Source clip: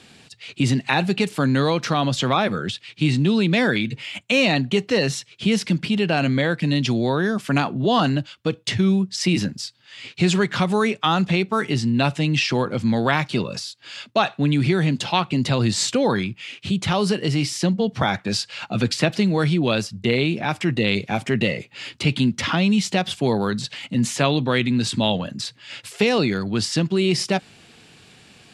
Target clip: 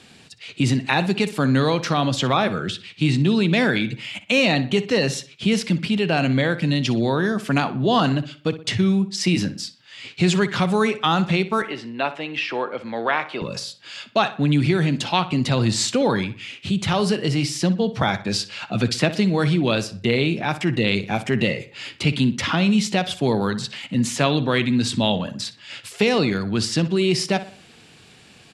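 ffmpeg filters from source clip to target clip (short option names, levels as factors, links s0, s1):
-filter_complex "[0:a]asettb=1/sr,asplit=3[s0][s1][s2];[s0]atrim=end=11.624[s3];[s1]atrim=start=11.62:end=13.42,asetpts=PTS-STARTPTS,afade=t=in:d=0.004:c=qsin,afade=t=out:st=1.796:d=0.004:c=qsin,acrossover=split=350 3200:gain=0.0708 1 0.126[s4][s5][s6];[s4][s5][s6]amix=inputs=3:normalize=0[s7];[s2]atrim=start=13.416[s8];[s3][s7]acrossfade=d=0.004:c1=hsin:c2=qsin[s9];[s9][s8]acrossfade=d=0.004:c1=qsin:c2=hsin,asplit=2[s10][s11];[s11]adelay=61,lowpass=f=3600:p=1,volume=0.211,asplit=2[s12][s13];[s13]adelay=61,lowpass=f=3600:p=1,volume=0.43,asplit=2[s14][s15];[s15]adelay=61,lowpass=f=3600:p=1,volume=0.43,asplit=2[s16][s17];[s17]adelay=61,lowpass=f=3600:p=1,volume=0.43[s18];[s10][s12][s14][s16][s18]amix=inputs=5:normalize=0"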